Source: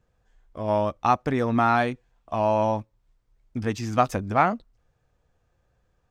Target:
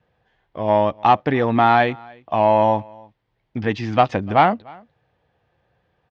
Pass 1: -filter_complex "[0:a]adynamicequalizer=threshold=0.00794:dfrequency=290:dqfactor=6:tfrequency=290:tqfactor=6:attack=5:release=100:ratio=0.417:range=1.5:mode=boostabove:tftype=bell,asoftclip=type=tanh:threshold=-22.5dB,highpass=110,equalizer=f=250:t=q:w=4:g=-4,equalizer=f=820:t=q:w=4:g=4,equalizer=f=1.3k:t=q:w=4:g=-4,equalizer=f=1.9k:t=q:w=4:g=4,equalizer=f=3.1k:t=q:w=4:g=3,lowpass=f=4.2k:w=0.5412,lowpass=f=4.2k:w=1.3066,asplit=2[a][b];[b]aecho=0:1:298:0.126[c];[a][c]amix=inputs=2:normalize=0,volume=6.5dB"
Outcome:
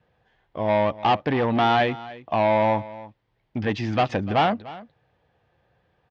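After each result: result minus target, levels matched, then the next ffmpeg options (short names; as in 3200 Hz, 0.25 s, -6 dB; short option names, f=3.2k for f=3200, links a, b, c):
soft clip: distortion +12 dB; echo-to-direct +7.5 dB
-filter_complex "[0:a]adynamicequalizer=threshold=0.00794:dfrequency=290:dqfactor=6:tfrequency=290:tqfactor=6:attack=5:release=100:ratio=0.417:range=1.5:mode=boostabove:tftype=bell,asoftclip=type=tanh:threshold=-11dB,highpass=110,equalizer=f=250:t=q:w=4:g=-4,equalizer=f=820:t=q:w=4:g=4,equalizer=f=1.3k:t=q:w=4:g=-4,equalizer=f=1.9k:t=q:w=4:g=4,equalizer=f=3.1k:t=q:w=4:g=3,lowpass=f=4.2k:w=0.5412,lowpass=f=4.2k:w=1.3066,asplit=2[a][b];[b]aecho=0:1:298:0.126[c];[a][c]amix=inputs=2:normalize=0,volume=6.5dB"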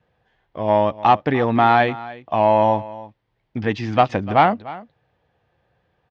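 echo-to-direct +7.5 dB
-filter_complex "[0:a]adynamicequalizer=threshold=0.00794:dfrequency=290:dqfactor=6:tfrequency=290:tqfactor=6:attack=5:release=100:ratio=0.417:range=1.5:mode=boostabove:tftype=bell,asoftclip=type=tanh:threshold=-11dB,highpass=110,equalizer=f=250:t=q:w=4:g=-4,equalizer=f=820:t=q:w=4:g=4,equalizer=f=1.3k:t=q:w=4:g=-4,equalizer=f=1.9k:t=q:w=4:g=4,equalizer=f=3.1k:t=q:w=4:g=3,lowpass=f=4.2k:w=0.5412,lowpass=f=4.2k:w=1.3066,asplit=2[a][b];[b]aecho=0:1:298:0.0531[c];[a][c]amix=inputs=2:normalize=0,volume=6.5dB"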